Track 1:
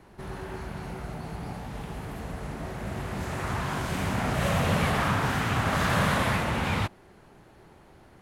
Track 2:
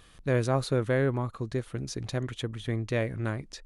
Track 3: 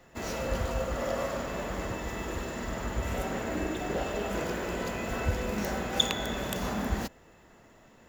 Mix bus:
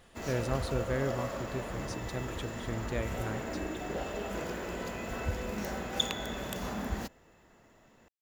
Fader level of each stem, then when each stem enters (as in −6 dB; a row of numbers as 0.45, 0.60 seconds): muted, −7.0 dB, −4.5 dB; muted, 0.00 s, 0.00 s